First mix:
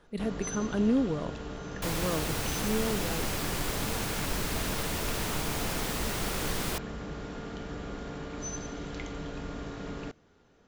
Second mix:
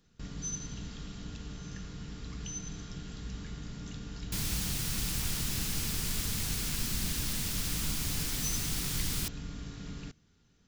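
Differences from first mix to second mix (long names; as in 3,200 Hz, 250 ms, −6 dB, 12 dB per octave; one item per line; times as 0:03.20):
speech: muted
second sound: entry +2.50 s
master: add drawn EQ curve 170 Hz 0 dB, 570 Hz −17 dB, 5,000 Hz +2 dB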